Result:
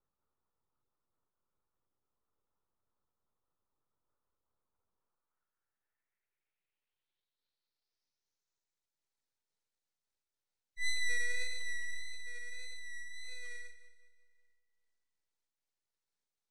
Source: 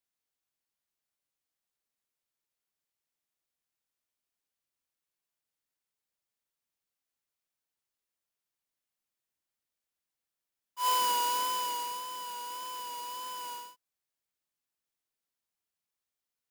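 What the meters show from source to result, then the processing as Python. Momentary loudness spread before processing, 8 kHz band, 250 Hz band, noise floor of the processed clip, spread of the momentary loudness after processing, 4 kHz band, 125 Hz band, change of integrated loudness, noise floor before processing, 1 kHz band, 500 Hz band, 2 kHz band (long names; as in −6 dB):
14 LU, −7.5 dB, below −20 dB, below −85 dBFS, 14 LU, −9.0 dB, can't be measured, −7.5 dB, below −85 dBFS, below −40 dB, −12.0 dB, +8.0 dB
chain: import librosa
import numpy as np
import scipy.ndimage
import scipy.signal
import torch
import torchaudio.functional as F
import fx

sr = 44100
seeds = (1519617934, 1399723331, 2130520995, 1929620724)

y = fx.graphic_eq_10(x, sr, hz=(125, 250, 500, 2000, 4000, 8000, 16000), db=(-3, 4, -7, 12, 10, -8, -4))
y = fx.filter_sweep_highpass(y, sr, from_hz=1700.0, to_hz=240.0, start_s=4.93, end_s=6.39, q=4.0)
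y = fx.notch(y, sr, hz=5300.0, q=10.0)
y = fx.spec_gate(y, sr, threshold_db=-15, keep='strong')
y = fx.riaa(y, sr, side='playback')
y = y + 0.91 * np.pad(y, (int(2.2 * sr / 1000.0), 0))[:len(y)]
y = np.abs(y)
y = fx.echo_split(y, sr, split_hz=2000.0, low_ms=191, high_ms=137, feedback_pct=52, wet_db=-12.5)
y = fx.filter_sweep_lowpass(y, sr, from_hz=1200.0, to_hz=9100.0, start_s=5.16, end_s=9.04, q=3.7)
y = fx.am_noise(y, sr, seeds[0], hz=5.7, depth_pct=55)
y = y * librosa.db_to_amplitude(-4.5)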